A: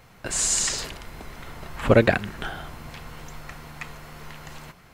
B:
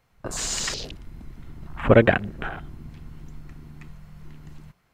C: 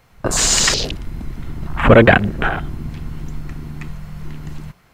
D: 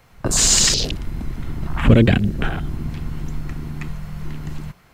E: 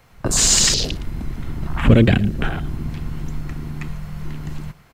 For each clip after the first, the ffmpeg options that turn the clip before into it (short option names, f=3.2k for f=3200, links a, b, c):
-filter_complex "[0:a]afwtdn=0.02,acrossover=split=5700[a][b];[b]acompressor=threshold=-40dB:ratio=4:attack=1:release=60[c];[a][c]amix=inputs=2:normalize=0,volume=1.5dB"
-af "apsyclip=15dB,volume=-2dB"
-filter_complex "[0:a]acrossover=split=350|3000[a][b][c];[b]acompressor=threshold=-29dB:ratio=6[d];[a][d][c]amix=inputs=3:normalize=0,volume=1dB"
-af "aecho=1:1:112:0.0944"